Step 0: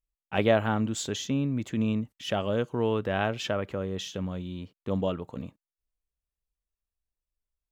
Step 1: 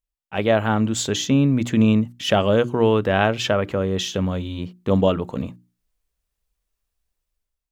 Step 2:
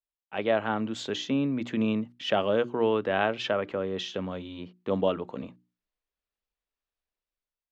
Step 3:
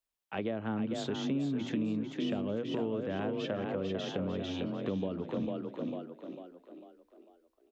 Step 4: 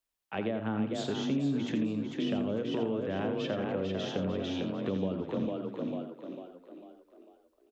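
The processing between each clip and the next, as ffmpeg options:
ffmpeg -i in.wav -af "bandreject=frequency=60:width_type=h:width=6,bandreject=frequency=120:width_type=h:width=6,bandreject=frequency=180:width_type=h:width=6,bandreject=frequency=240:width_type=h:width=6,bandreject=frequency=300:width_type=h:width=6,bandreject=frequency=360:width_type=h:width=6,dynaudnorm=framelen=160:gausssize=7:maxgain=11.5dB" out.wav
ffmpeg -i in.wav -filter_complex "[0:a]acrossover=split=210 4900:gain=0.224 1 0.0794[link_01][link_02][link_03];[link_01][link_02][link_03]amix=inputs=3:normalize=0,volume=-6.5dB" out.wav
ffmpeg -i in.wav -filter_complex "[0:a]acrossover=split=360[link_01][link_02];[link_02]acompressor=threshold=-46dB:ratio=2.5[link_03];[link_01][link_03]amix=inputs=2:normalize=0,asplit=2[link_04][link_05];[link_05]asplit=5[link_06][link_07][link_08][link_09][link_10];[link_06]adelay=448,afreqshift=30,volume=-5dB[link_11];[link_07]adelay=896,afreqshift=60,volume=-12.3dB[link_12];[link_08]adelay=1344,afreqshift=90,volume=-19.7dB[link_13];[link_09]adelay=1792,afreqshift=120,volume=-27dB[link_14];[link_10]adelay=2240,afreqshift=150,volume=-34.3dB[link_15];[link_11][link_12][link_13][link_14][link_15]amix=inputs=5:normalize=0[link_16];[link_04][link_16]amix=inputs=2:normalize=0,acompressor=threshold=-35dB:ratio=5,volume=4.5dB" out.wav
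ffmpeg -i in.wav -af "aecho=1:1:85:0.376,volume=1.5dB" out.wav

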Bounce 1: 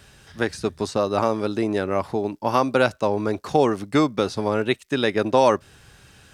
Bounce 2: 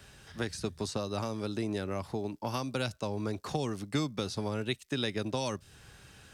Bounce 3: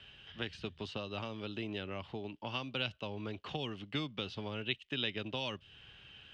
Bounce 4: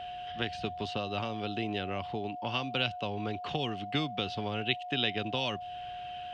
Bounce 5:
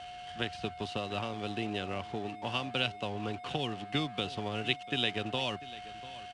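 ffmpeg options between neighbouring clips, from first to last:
ffmpeg -i in.wav -filter_complex "[0:a]acrossover=split=190|3000[link_01][link_02][link_03];[link_02]acompressor=threshold=-30dB:ratio=6[link_04];[link_01][link_04][link_03]amix=inputs=3:normalize=0,volume=-4dB" out.wav
ffmpeg -i in.wav -af "lowpass=frequency=3000:width_type=q:width=8.4,volume=-7.5dB" out.wav
ffmpeg -i in.wav -af "aeval=exprs='val(0)+0.00631*sin(2*PI*720*n/s)':channel_layout=same,volume=5.5dB" out.wav
ffmpeg -i in.wav -af "aeval=exprs='sgn(val(0))*max(abs(val(0))-0.00422,0)':channel_layout=same,aecho=1:1:694:0.133,aresample=22050,aresample=44100" out.wav

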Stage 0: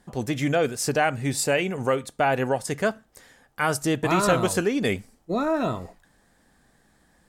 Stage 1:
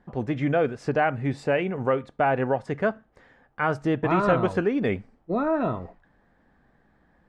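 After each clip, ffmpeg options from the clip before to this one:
ffmpeg -i in.wav -af "lowpass=1900" out.wav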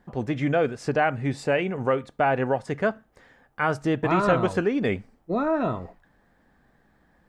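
ffmpeg -i in.wav -af "highshelf=frequency=4800:gain=10.5" out.wav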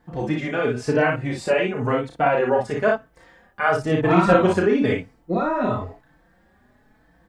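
ffmpeg -i in.wav -filter_complex "[0:a]asplit=2[link_01][link_02];[link_02]aecho=0:1:33|57:0.631|0.668[link_03];[link_01][link_03]amix=inputs=2:normalize=0,asplit=2[link_04][link_05];[link_05]adelay=4.1,afreqshift=0.99[link_06];[link_04][link_06]amix=inputs=2:normalize=1,volume=4.5dB" out.wav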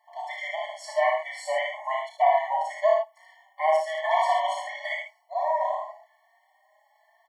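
ffmpeg -i in.wav -filter_complex "[0:a]asplit=2[link_01][link_02];[link_02]aecho=0:1:76:0.562[link_03];[link_01][link_03]amix=inputs=2:normalize=0,afftfilt=real='re*eq(mod(floor(b*sr/1024/580),2),1)':imag='im*eq(mod(floor(b*sr/1024/580),2),1)':win_size=1024:overlap=0.75" out.wav

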